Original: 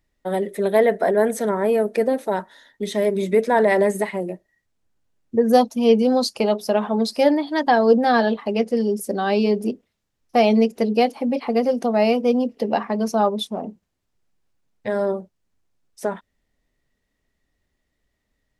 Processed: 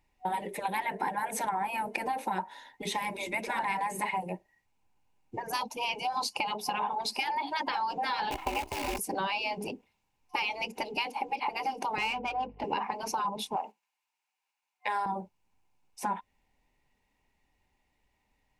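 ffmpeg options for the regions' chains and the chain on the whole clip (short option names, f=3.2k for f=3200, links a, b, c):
-filter_complex "[0:a]asettb=1/sr,asplit=3[a][b][c];[a]atrim=end=8.314[d];[b]atrim=start=8.31:end=8.99,asetpts=PTS-STARTPTS,afade=t=in:d=0.004:c=qsin,afade=t=out:st=0.676:d=0.004:c=qsin,aeval=exprs='val(0)*sin(2*PI*160*n/s)':c=same,acrusher=bits=6:dc=4:mix=0:aa=0.000001[e];[c]atrim=start=8.986[f];[d][e]acrossfade=d=0.004:c1=hsin:c2=qsin[g];[g][f]acrossfade=d=0.004:c1=qsin:c2=hsin,asettb=1/sr,asplit=3[h][i][j];[h]atrim=end=11.984[k];[i]atrim=start=11.98:end=12.64,asetpts=PTS-STARTPTS,afade=t=in:d=0.004:c=qsin,afade=t=out:st=0.656:d=0.004:c=qsin,highpass=320,aeval=exprs='val(0)+0.00282*(sin(2*PI*50*n/s)+sin(2*PI*2*50*n/s)/2+sin(2*PI*3*50*n/s)/3+sin(2*PI*4*50*n/s)/4+sin(2*PI*5*50*n/s)/5)':c=same,adynamicsmooth=sensitivity=2.5:basefreq=1.8k[l];[j]atrim=start=12.636[m];[k][l]acrossfade=d=0.004:c1=hsin:c2=qsin[n];[n][m]acrossfade=d=0.004:c1=qsin:c2=hsin,asettb=1/sr,asplit=3[o][p][q];[o]atrim=end=13.564[r];[p]atrim=start=13.56:end=15.06,asetpts=PTS-STARTPTS,afade=t=in:d=0.004:c=qsin,afade=t=out:st=1.496:d=0.004:c=qsin,highpass=1.1k,acontrast=31,agate=range=-7dB:threshold=-54dB:ratio=16:release=100:detection=peak[s];[q]atrim=start=15.056[t];[r][s]acrossfade=d=0.004:c1=hsin:c2=qsin[u];[u][t]acrossfade=d=0.004:c1=qsin:c2=hsin,afftfilt=real='re*lt(hypot(re,im),0.316)':imag='im*lt(hypot(re,im),0.316)':win_size=1024:overlap=0.75,superequalizer=9b=3.98:12b=2.51,acompressor=threshold=-26dB:ratio=6,volume=-2dB"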